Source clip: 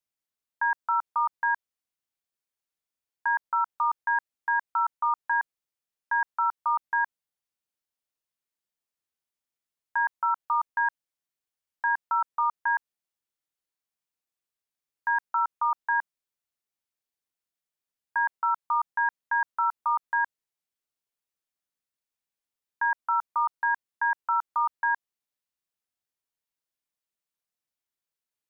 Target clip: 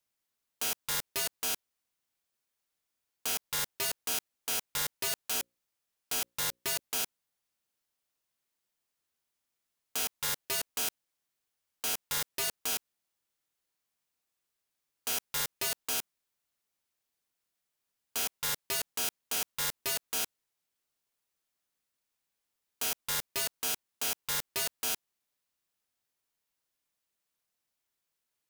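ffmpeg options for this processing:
-filter_complex "[0:a]asettb=1/sr,asplit=3[a][b][c];[a]atrim=end=5.274[d];[b]atrim=start=5.27:end=6.8,asetpts=PTS-STARTPTS,afade=t=in:d=0.004:c=qsin,afade=t=out:st=1.526:d=0.004:c=qsin,bandreject=f=60:t=h:w=6,bandreject=f=120:t=h:w=6,bandreject=f=180:t=h:w=6,bandreject=f=240:t=h:w=6,bandreject=f=300:t=h:w=6,bandreject=f=360:t=h:w=6,bandreject=f=420:t=h:w=6,bandreject=f=480:t=h:w=6,bandreject=f=540:t=h:w=6[e];[c]atrim=start=6.796[f];[d][e]acrossfade=d=0.004:c1=hsin:c2=qsin[g];[g][f]acrossfade=d=0.004:c1=qsin:c2=hsin,aeval=exprs='(mod(37.6*val(0)+1,2)-1)/37.6':c=same,volume=5.5dB"

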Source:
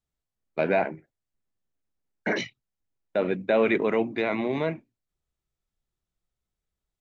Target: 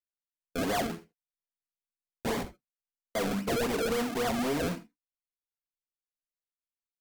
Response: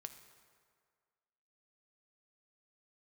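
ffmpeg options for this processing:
-filter_complex "[0:a]agate=range=-35dB:threshold=-45dB:ratio=16:detection=peak,highshelf=f=3.6k:g=-7.5,aecho=1:1:4.4:0.73,aresample=16000,asoftclip=type=tanh:threshold=-25dB,aresample=44100,acrusher=samples=34:mix=1:aa=0.000001:lfo=1:lforange=34:lforate=3.7,asetrate=46722,aresample=44100,atempo=0.943874,asplit=2[a][b];[b]aeval=exprs='0.0188*(abs(mod(val(0)/0.0188+3,4)-2)-1)':c=same,volume=-7.5dB[c];[a][c]amix=inputs=2:normalize=0[d];[1:a]atrim=start_sample=2205,atrim=end_sample=3969[e];[d][e]afir=irnorm=-1:irlink=0,volume=5dB"

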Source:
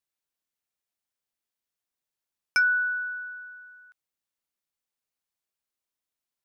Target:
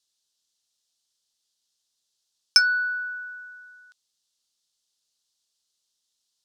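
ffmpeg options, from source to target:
-af "lowpass=4.3k,acontrast=39,aexciter=amount=11.4:drive=6.6:freq=3.4k,volume=-5dB"

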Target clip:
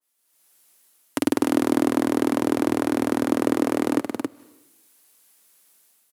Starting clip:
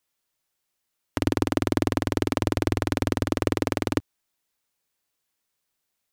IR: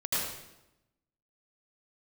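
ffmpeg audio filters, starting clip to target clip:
-filter_complex "[0:a]highpass=f=180:w=0.5412,highpass=f=180:w=1.3066,equalizer=f=11k:t=o:w=0.89:g=11,alimiter=limit=-10.5dB:level=0:latency=1:release=16,dynaudnorm=f=140:g=5:m=15dB,aecho=1:1:274:0.531,asplit=2[a][b];[1:a]atrim=start_sample=2205,adelay=75[c];[b][c]afir=irnorm=-1:irlink=0,volume=-30.5dB[d];[a][d]amix=inputs=2:normalize=0,adynamicequalizer=threshold=0.01:dfrequency=2100:dqfactor=0.7:tfrequency=2100:tqfactor=0.7:attack=5:release=100:ratio=0.375:range=3.5:mode=cutabove:tftype=highshelf,volume=-1dB"

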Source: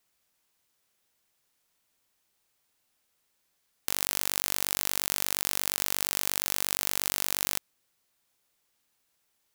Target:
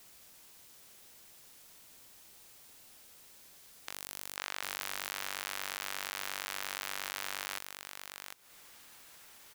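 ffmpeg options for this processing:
-af "asetnsamples=n=441:p=0,asendcmd='4.36 equalizer g 4.5',equalizer=f=1.5k:w=0.62:g=-2.5,aecho=1:1:751:0.2,aeval=exprs='clip(val(0),-1,0.178)':c=same,acompressor=threshold=-48dB:ratio=6,aeval=exprs='0.141*sin(PI/2*5.01*val(0)/0.141)':c=same"

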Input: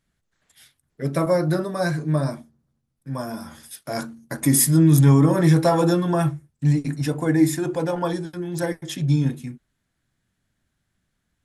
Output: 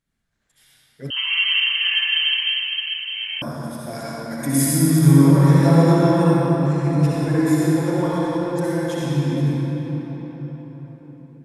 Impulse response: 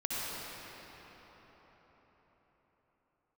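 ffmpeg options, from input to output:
-filter_complex "[1:a]atrim=start_sample=2205[a];[0:a][a]afir=irnorm=-1:irlink=0,asettb=1/sr,asplit=3[b][c][d];[b]atrim=end=1.104[e];[c]atrim=start=1.1:end=3.42,asetpts=PTS-STARTPTS,afade=t=in:d=0.004:c=qsin,afade=t=out:st=2.316:d=0.004:c=qsin,lowpass=f=2.8k:t=q:w=0.5098,lowpass=f=2.8k:t=q:w=0.6013,lowpass=f=2.8k:t=q:w=0.9,lowpass=f=2.8k:t=q:w=2.563,afreqshift=-3300[f];[d]atrim=start=3.416[g];[e][f]acrossfade=d=0.004:c1=hsin:c2=qsin[h];[h][g]acrossfade=d=0.004:c1=qsin:c2=hsin,volume=-4.5dB"

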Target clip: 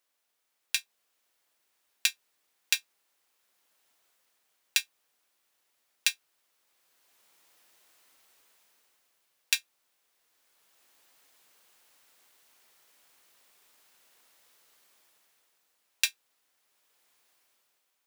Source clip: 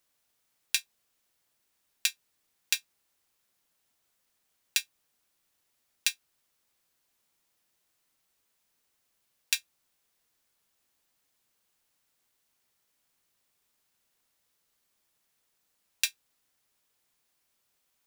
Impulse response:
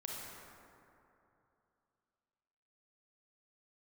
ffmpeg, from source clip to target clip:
-af "bass=f=250:g=-13,treble=f=4k:g=-3,dynaudnorm=f=170:g=11:m=15dB,volume=-1dB"

